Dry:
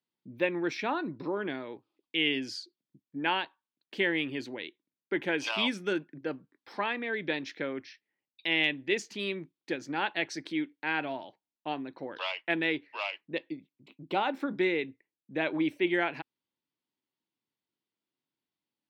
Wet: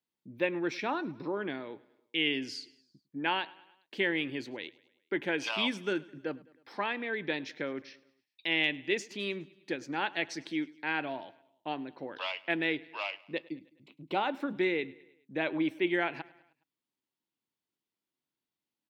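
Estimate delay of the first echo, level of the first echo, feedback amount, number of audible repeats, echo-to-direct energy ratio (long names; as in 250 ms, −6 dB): 104 ms, −22.5 dB, 55%, 3, −21.0 dB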